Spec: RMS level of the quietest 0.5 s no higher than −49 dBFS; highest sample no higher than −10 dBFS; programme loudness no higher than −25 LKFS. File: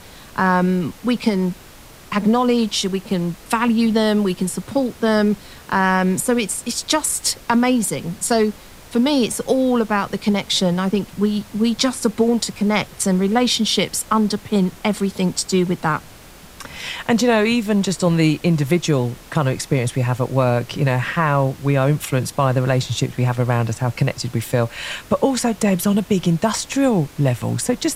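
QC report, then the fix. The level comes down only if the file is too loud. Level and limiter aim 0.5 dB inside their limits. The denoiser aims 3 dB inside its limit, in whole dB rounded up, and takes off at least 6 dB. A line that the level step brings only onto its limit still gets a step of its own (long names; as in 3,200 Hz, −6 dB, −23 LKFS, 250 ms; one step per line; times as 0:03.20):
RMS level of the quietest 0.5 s −42 dBFS: out of spec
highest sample −4.0 dBFS: out of spec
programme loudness −19.5 LKFS: out of spec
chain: broadband denoise 6 dB, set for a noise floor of −42 dBFS
level −6 dB
brickwall limiter −10.5 dBFS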